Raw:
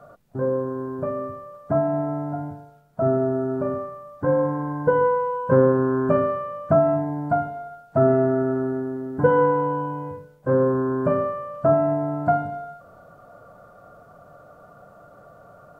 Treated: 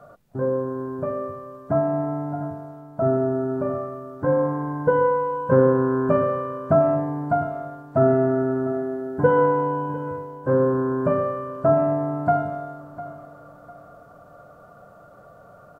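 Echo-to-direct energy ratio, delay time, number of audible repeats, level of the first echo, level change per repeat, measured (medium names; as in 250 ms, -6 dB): -15.0 dB, 702 ms, 2, -15.5 dB, -10.0 dB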